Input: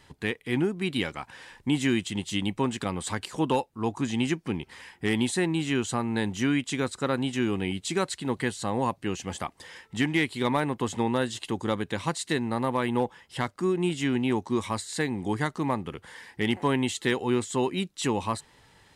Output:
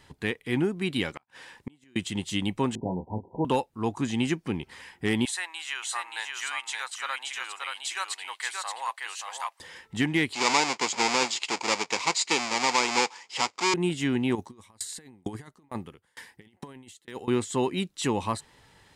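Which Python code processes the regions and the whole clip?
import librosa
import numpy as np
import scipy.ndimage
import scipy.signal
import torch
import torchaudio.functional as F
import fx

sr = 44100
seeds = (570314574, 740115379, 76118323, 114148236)

y = fx.chain(x, sr, fx.highpass(hz=140.0, slope=6),
    fx.gate_flip(shuts_db=-22.0, range_db=-34), at=(1.11, 1.96))
y = fx.chain(y, sr, fx.cheby1_lowpass(hz=970.0, order=10),
    fx.doubler(ms=27.0, db=-6.5), at=(2.75, 3.45))
y = fx.chain(y, sr, fx.highpass(hz=910.0, slope=24),
    fx.echo_single(ms=577, db=-4.0), at=(5.25, 9.6))
y = fx.chain(y, sr, fx.halfwave_hold(),
    fx.cabinet(low_hz=490.0, low_slope=12, high_hz=7700.0, hz=(600.0, 910.0, 1600.0, 2300.0, 4900.0, 7100.0), db=(-7, 6, -5, 9, 9, 9)), at=(10.33, 13.74))
y = fx.chain(y, sr, fx.high_shelf(hz=10000.0, db=12.0),
    fx.over_compress(threshold_db=-30.0, ratio=-0.5),
    fx.tremolo_decay(direction='decaying', hz=2.2, depth_db=34), at=(14.35, 17.28))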